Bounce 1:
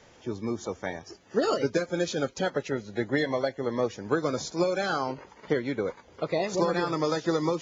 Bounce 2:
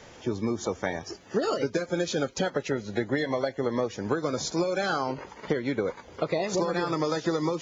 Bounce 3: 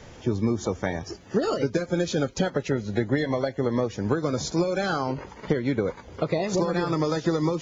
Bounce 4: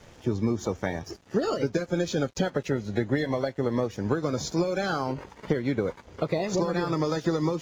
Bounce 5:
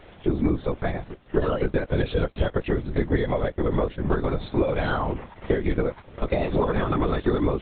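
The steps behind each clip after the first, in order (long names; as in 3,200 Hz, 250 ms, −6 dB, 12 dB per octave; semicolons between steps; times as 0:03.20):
downward compressor, threshold −30 dBFS, peak gain reduction 10.5 dB; level +6.5 dB
low-shelf EQ 200 Hz +11 dB
dead-zone distortion −51 dBFS; level −1.5 dB
linear-prediction vocoder at 8 kHz whisper; level +3.5 dB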